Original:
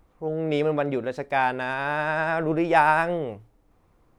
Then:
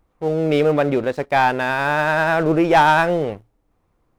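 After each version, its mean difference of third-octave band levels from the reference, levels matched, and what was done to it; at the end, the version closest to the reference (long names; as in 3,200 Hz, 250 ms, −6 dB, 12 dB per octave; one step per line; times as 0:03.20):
3.0 dB: leveller curve on the samples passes 2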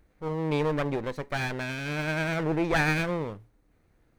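7.0 dB: lower of the sound and its delayed copy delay 0.47 ms
level −2.5 dB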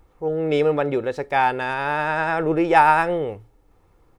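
1.0 dB: comb filter 2.3 ms, depth 36%
level +3 dB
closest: third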